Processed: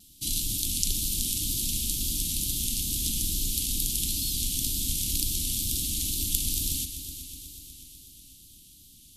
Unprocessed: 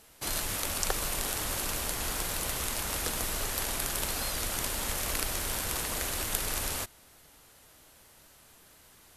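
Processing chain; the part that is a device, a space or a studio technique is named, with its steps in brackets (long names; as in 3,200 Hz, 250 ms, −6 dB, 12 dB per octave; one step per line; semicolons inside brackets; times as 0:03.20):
elliptic band-stop filter 280–3,300 Hz, stop band 40 dB
multi-head tape echo (echo machine with several playback heads 123 ms, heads all three, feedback 69%, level −17 dB; tape wow and flutter 47 cents)
level +5 dB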